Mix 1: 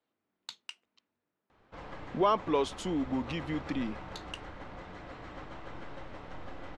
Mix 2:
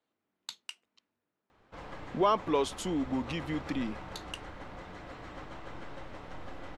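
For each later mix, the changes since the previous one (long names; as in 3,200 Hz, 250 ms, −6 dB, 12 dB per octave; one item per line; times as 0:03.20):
master: remove high-frequency loss of the air 50 metres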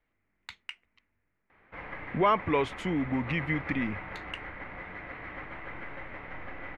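speech: remove band-pass filter 220–4,500 Hz
master: add low-pass with resonance 2,100 Hz, resonance Q 4.6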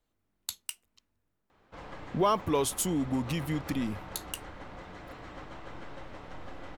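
master: remove low-pass with resonance 2,100 Hz, resonance Q 4.6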